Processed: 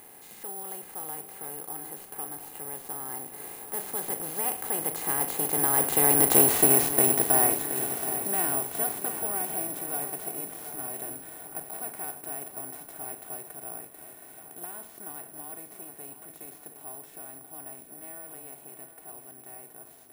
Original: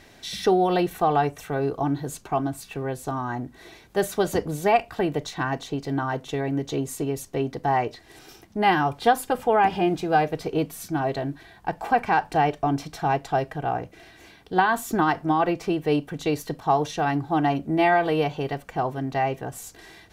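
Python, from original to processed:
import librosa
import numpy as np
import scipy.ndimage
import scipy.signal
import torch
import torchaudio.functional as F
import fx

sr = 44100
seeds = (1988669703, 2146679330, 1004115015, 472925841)

p1 = fx.bin_compress(x, sr, power=0.4)
p2 = fx.doppler_pass(p1, sr, speed_mps=20, closest_m=8.7, pass_at_s=6.48)
p3 = p2 + fx.echo_feedback(p2, sr, ms=723, feedback_pct=54, wet_db=-11, dry=0)
p4 = (np.kron(p3[::4], np.eye(4)[0]) * 4)[:len(p3)]
y = F.gain(torch.from_numpy(p4), -6.0).numpy()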